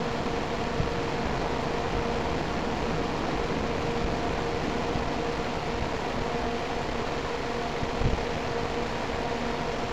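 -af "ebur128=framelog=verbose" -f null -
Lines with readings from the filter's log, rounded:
Integrated loudness:
  I:         -29.7 LUFS
  Threshold: -39.7 LUFS
Loudness range:
  LRA:         0.9 LU
  Threshold: -49.6 LUFS
  LRA low:   -30.1 LUFS
  LRA high:  -29.2 LUFS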